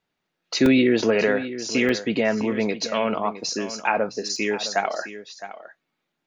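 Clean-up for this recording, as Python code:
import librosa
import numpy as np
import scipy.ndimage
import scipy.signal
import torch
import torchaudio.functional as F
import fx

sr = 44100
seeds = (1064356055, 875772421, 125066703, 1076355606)

y = fx.fix_interpolate(x, sr, at_s=(0.66, 1.89, 4.36), length_ms=2.3)
y = fx.fix_echo_inverse(y, sr, delay_ms=662, level_db=-13.5)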